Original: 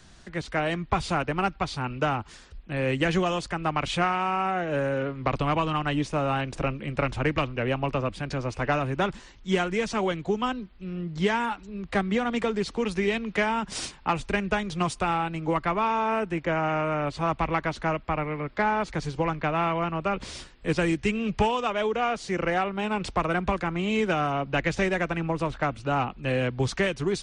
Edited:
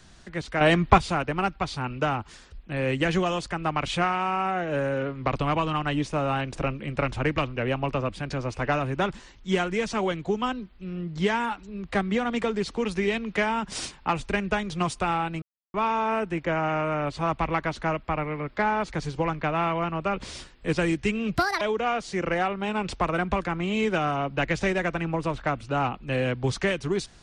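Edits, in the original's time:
0:00.61–0:00.98: clip gain +8.5 dB
0:15.42–0:15.74: silence
0:21.36–0:21.77: play speed 163%

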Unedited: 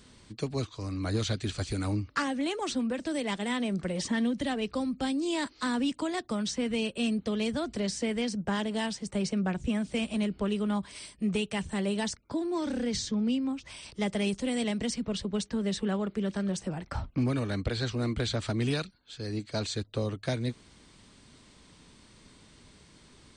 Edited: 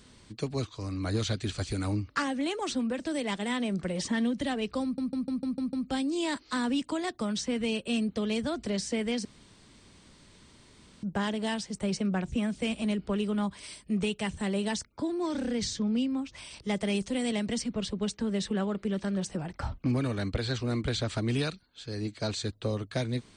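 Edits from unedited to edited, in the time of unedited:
0:04.83: stutter 0.15 s, 7 plays
0:08.35: splice in room tone 1.78 s

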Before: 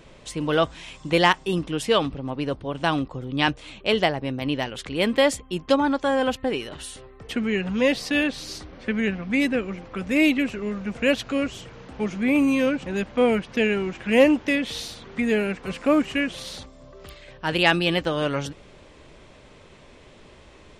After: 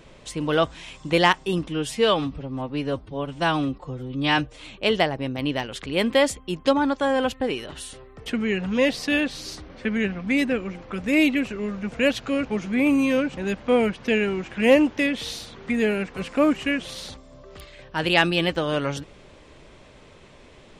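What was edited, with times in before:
0:01.68–0:03.62: time-stretch 1.5×
0:11.48–0:11.94: remove

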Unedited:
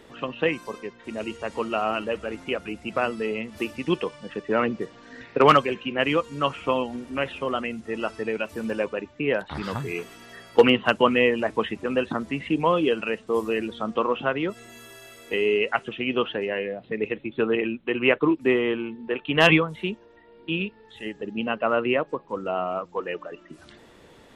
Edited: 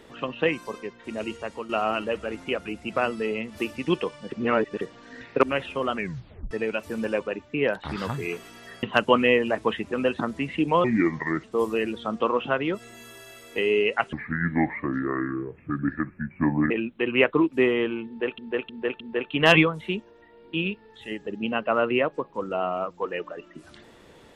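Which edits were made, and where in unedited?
0:01.34–0:01.69: fade out, to −11 dB
0:04.32–0:04.81: reverse
0:05.43–0:07.09: remove
0:07.61: tape stop 0.56 s
0:10.49–0:10.75: remove
0:12.76–0:13.19: play speed 72%
0:15.88–0:17.58: play speed 66%
0:18.95–0:19.26: repeat, 4 plays

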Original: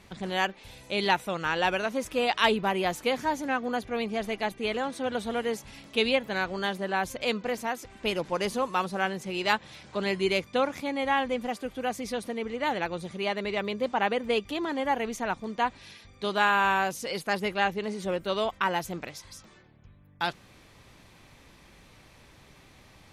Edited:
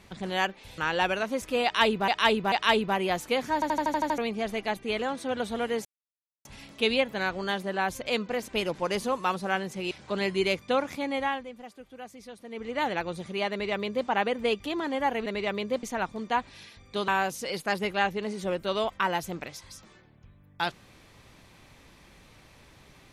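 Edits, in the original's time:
0:00.78–0:01.41: remove
0:02.27–0:02.71: repeat, 3 plays
0:03.29: stutter in place 0.08 s, 8 plays
0:05.60: splice in silence 0.60 s
0:07.63–0:07.98: remove
0:09.41–0:09.76: remove
0:11.00–0:12.60: duck −12.5 dB, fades 0.32 s
0:13.36–0:13.93: duplicate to 0:15.11
0:16.36–0:16.69: remove

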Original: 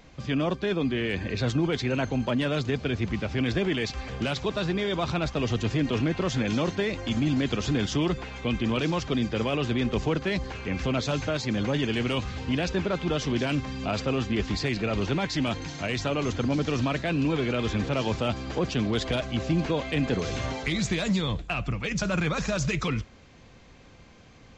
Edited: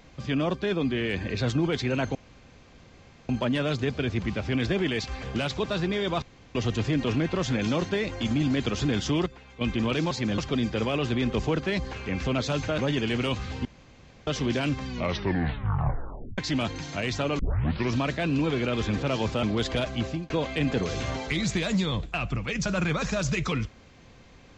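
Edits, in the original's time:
0:02.15: splice in room tone 1.14 s
0:05.08–0:05.41: fill with room tone
0:08.12–0:08.47: clip gain −11.5 dB
0:11.37–0:11.64: move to 0:08.97
0:12.51–0:13.13: fill with room tone
0:13.72: tape stop 1.52 s
0:16.25: tape start 0.55 s
0:18.29–0:18.79: remove
0:19.38–0:19.66: fade out

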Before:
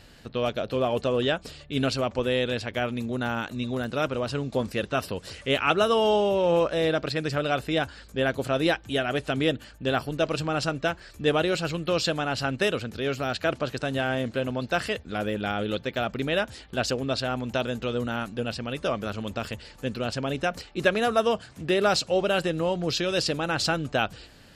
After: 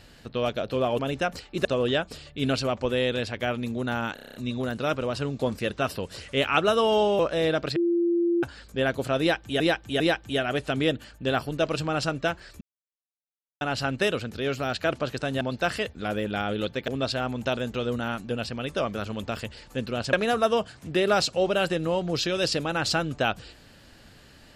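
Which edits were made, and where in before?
0:03.48: stutter 0.03 s, 8 plays
0:06.32–0:06.59: remove
0:07.16–0:07.83: beep over 343 Hz −20 dBFS
0:08.60–0:09.00: repeat, 3 plays
0:11.21–0:12.21: silence
0:14.01–0:14.51: remove
0:15.98–0:16.96: remove
0:20.21–0:20.87: move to 0:00.99

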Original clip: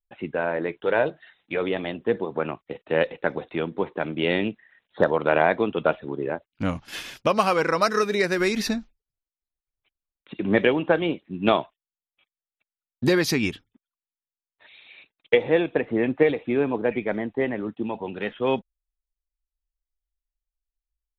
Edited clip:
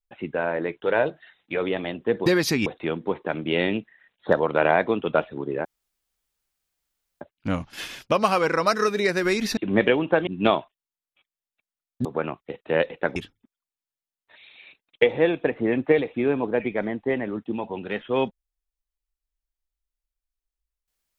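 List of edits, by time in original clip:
0:02.26–0:03.37: swap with 0:13.07–0:13.47
0:06.36: splice in room tone 1.56 s
0:08.72–0:10.34: remove
0:11.04–0:11.29: remove

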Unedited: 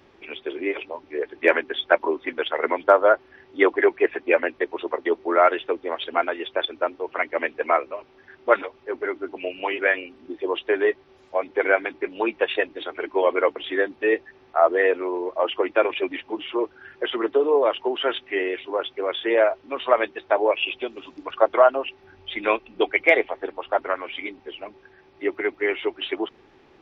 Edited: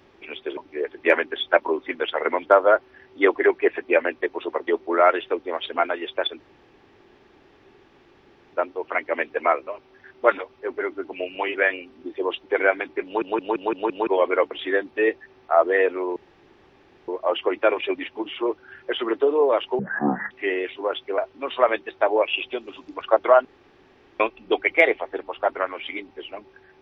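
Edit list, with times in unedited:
0:00.57–0:00.95: remove
0:06.78: splice in room tone 2.14 s
0:10.67–0:11.48: remove
0:12.10: stutter in place 0.17 s, 6 plays
0:15.21: splice in room tone 0.92 s
0:17.92–0:18.20: play speed 54%
0:19.07–0:19.47: remove
0:21.74–0:22.49: fill with room tone

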